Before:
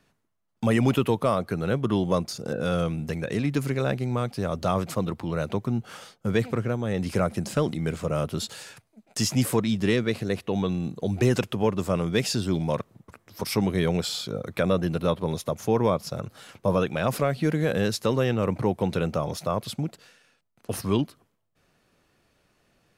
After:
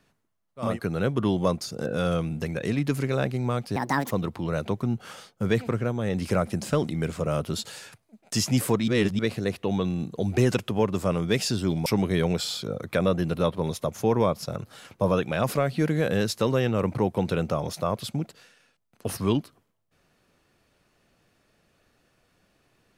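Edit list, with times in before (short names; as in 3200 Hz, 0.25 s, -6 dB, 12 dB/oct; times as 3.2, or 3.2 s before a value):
0.68–1.35 cut, crossfade 0.24 s
4.43–4.95 speed 149%
9.72–10.03 reverse
12.7–13.5 cut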